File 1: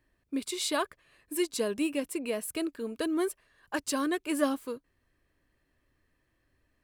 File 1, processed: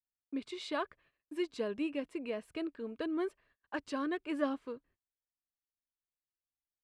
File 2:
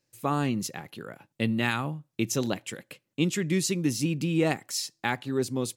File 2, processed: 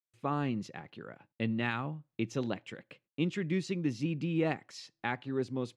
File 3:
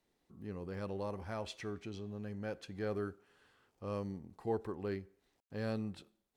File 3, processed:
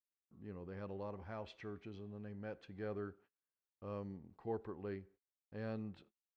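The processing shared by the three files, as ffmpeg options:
-af "agate=range=0.0282:threshold=0.00112:ratio=16:detection=peak,lowpass=3100,volume=0.531"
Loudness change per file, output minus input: -6.5 LU, -6.0 LU, -5.5 LU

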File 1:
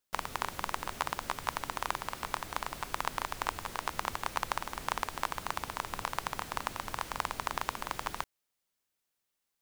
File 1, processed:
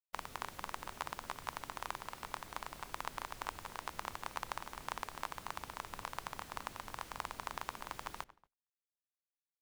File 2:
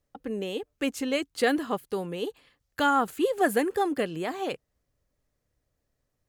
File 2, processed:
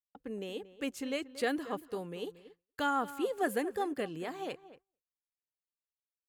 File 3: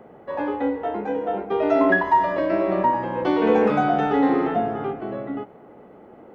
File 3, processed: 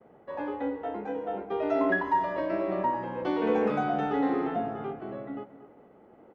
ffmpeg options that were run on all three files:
-filter_complex "[0:a]asplit=2[s0][s1];[s1]adelay=231,lowpass=f=2200:p=1,volume=0.178,asplit=2[s2][s3];[s3]adelay=231,lowpass=f=2200:p=1,volume=0.19[s4];[s0][s2][s4]amix=inputs=3:normalize=0,agate=range=0.0224:threshold=0.00631:ratio=3:detection=peak,volume=0.398"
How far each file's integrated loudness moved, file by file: -8.0 LU, -8.0 LU, -8.0 LU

